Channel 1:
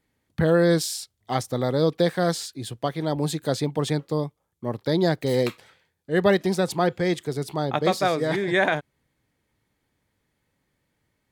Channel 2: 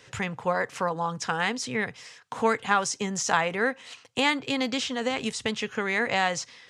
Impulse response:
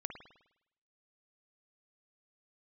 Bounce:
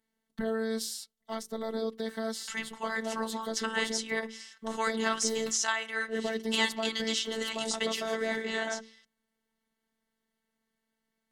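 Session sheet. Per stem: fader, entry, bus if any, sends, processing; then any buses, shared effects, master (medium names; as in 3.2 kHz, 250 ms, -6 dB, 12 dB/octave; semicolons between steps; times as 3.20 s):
-5.5 dB, 0.00 s, no send, peak limiter -14 dBFS, peak gain reduction 8 dB; high-pass 51 Hz; hum notches 50/100/150/200/250/300/350/400/450 Hz
8.09 s -8 dB -> 8.37 s -15.5 dB, 2.35 s, send -11.5 dB, tilt shelf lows -9.5 dB, about 940 Hz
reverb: on, RT60 0.85 s, pre-delay 51 ms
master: Butterworth band-stop 2.4 kHz, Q 7.8; robot voice 223 Hz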